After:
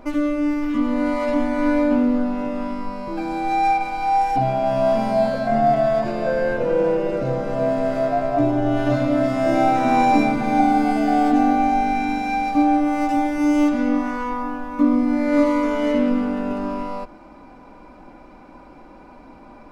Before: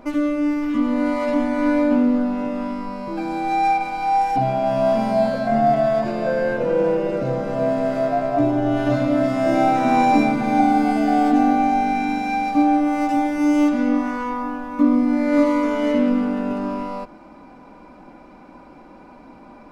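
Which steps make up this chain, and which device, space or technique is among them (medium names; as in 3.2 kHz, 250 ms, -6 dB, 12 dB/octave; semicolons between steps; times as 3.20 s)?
low shelf boost with a cut just above (bass shelf 81 Hz +7 dB; peaking EQ 190 Hz -3.5 dB 0.84 oct)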